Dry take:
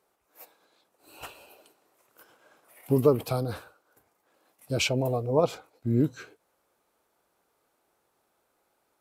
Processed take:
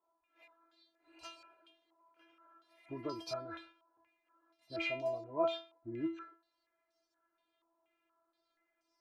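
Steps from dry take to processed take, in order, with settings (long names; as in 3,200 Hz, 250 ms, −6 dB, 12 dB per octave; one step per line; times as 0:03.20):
stiff-string resonator 330 Hz, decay 0.37 s, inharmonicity 0.002
low-pass on a step sequencer 4.2 Hz 970–5,400 Hz
level +5 dB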